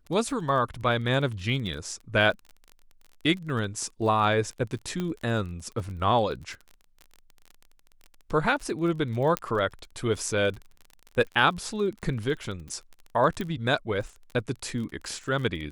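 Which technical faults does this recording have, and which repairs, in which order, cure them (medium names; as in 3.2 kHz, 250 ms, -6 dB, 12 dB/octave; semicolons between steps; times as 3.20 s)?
crackle 30 per s -35 dBFS
5.00 s: pop -18 dBFS
9.37 s: pop -10 dBFS
13.41 s: pop -19 dBFS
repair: de-click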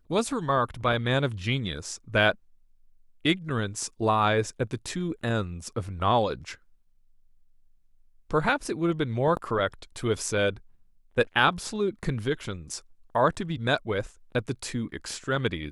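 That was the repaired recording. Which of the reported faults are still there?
9.37 s: pop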